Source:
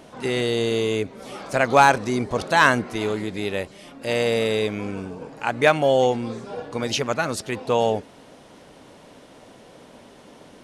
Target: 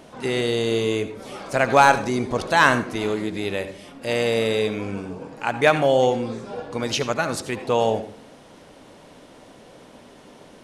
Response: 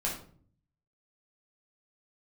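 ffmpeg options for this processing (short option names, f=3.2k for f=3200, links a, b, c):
-filter_complex "[0:a]asplit=2[a][b];[1:a]atrim=start_sample=2205,asetrate=70560,aresample=44100,adelay=70[c];[b][c]afir=irnorm=-1:irlink=0,volume=-13dB[d];[a][d]amix=inputs=2:normalize=0"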